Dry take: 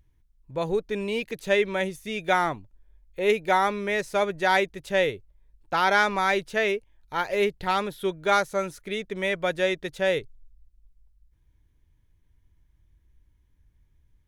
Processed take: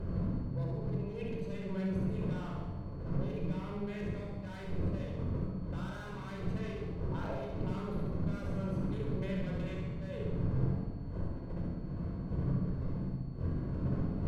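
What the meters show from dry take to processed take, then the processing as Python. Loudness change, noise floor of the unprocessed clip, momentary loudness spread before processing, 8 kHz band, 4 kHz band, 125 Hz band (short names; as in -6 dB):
-12.0 dB, -65 dBFS, 10 LU, under -20 dB, -22.5 dB, +8.0 dB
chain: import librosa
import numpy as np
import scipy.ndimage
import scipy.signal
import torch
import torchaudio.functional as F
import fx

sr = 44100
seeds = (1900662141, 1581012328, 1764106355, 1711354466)

p1 = fx.wiener(x, sr, points=25)
p2 = fx.dmg_wind(p1, sr, seeds[0], corner_hz=200.0, level_db=-28.0)
p3 = fx.peak_eq(p2, sr, hz=1300.0, db=4.5, octaves=0.46)
p4 = fx.tube_stage(p3, sr, drive_db=21.0, bias=0.45)
p5 = fx.over_compress(p4, sr, threshold_db=-38.0, ratio=-1.0)
p6 = p5 + 10.0 ** (-60.0 / 20.0) * np.sin(2.0 * np.pi * 4400.0 * np.arange(len(p5)) / sr)
p7 = p6 + fx.room_flutter(p6, sr, wall_m=11.8, rt60_s=0.89, dry=0)
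p8 = fx.room_shoebox(p7, sr, seeds[1], volume_m3=3300.0, walls='furnished', distance_m=5.1)
y = p8 * librosa.db_to_amplitude(-8.5)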